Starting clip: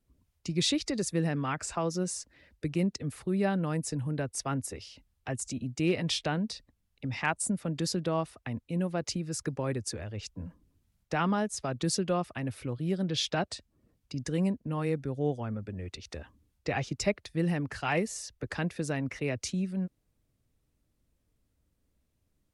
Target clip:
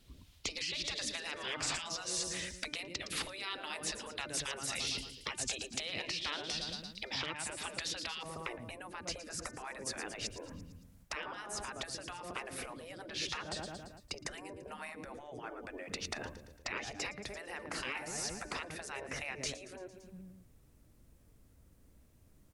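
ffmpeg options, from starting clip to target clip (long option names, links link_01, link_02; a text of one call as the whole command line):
ffmpeg -i in.wav -filter_complex "[0:a]aecho=1:1:113|226|339|452|565:0.112|0.0628|0.0352|0.0197|0.011,acrossover=split=3800[link_01][link_02];[link_02]acompressor=threshold=-45dB:ratio=4:attack=1:release=60[link_03];[link_01][link_03]amix=inputs=2:normalize=0,asetnsamples=nb_out_samples=441:pad=0,asendcmd='8.23 equalizer g -4.5',equalizer=frequency=3600:width=0.98:gain=12.5,acompressor=threshold=-37dB:ratio=16,bandreject=frequency=298.8:width_type=h:width=4,bandreject=frequency=597.6:width_type=h:width=4,bandreject=frequency=896.4:width_type=h:width=4,bandreject=frequency=1195.2:width_type=h:width=4,bandreject=frequency=1494:width_type=h:width=4,bandreject=frequency=1792.8:width_type=h:width=4,bandreject=frequency=2091.6:width_type=h:width=4,bandreject=frequency=2390.4:width_type=h:width=4,afftfilt=real='re*lt(hypot(re,im),0.0158)':imag='im*lt(hypot(re,im),0.0158)':win_size=1024:overlap=0.75,volume=11.5dB" out.wav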